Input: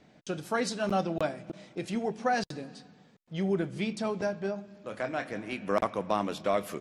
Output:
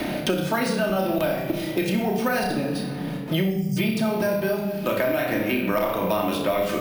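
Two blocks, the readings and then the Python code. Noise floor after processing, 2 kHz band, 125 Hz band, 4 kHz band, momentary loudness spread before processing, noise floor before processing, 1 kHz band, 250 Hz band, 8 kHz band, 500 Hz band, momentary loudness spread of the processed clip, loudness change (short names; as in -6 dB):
-30 dBFS, +9.0 dB, +10.5 dB, +10.0 dB, 11 LU, -61 dBFS, +4.5 dB, +10.0 dB, +6.5 dB, +8.0 dB, 3 LU, +8.0 dB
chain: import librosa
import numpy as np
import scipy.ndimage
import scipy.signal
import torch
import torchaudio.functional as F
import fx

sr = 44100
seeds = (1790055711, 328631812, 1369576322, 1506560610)

p1 = fx.peak_eq(x, sr, hz=2900.0, db=4.0, octaves=1.1)
p2 = fx.room_flutter(p1, sr, wall_m=5.4, rt60_s=0.29)
p3 = fx.spec_erase(p2, sr, start_s=3.5, length_s=0.27, low_hz=250.0, high_hz=4700.0)
p4 = fx.over_compress(p3, sr, threshold_db=-34.0, ratio=-1.0)
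p5 = p3 + (p4 * 10.0 ** (-2.5 / 20.0))
p6 = fx.room_shoebox(p5, sr, seeds[0], volume_m3=2500.0, walls='furnished', distance_m=2.7)
p7 = np.repeat(scipy.signal.resample_poly(p6, 1, 3), 3)[:len(p6)]
y = fx.band_squash(p7, sr, depth_pct=100)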